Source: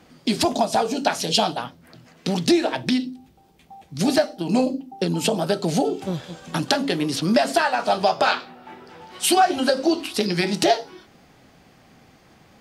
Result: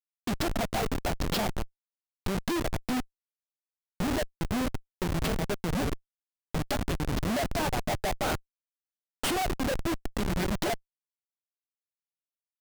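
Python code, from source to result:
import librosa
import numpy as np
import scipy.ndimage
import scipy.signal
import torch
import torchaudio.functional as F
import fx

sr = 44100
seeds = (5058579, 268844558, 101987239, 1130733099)

y = fx.schmitt(x, sr, flips_db=-19.5)
y = F.gain(torch.from_numpy(y), -4.5).numpy()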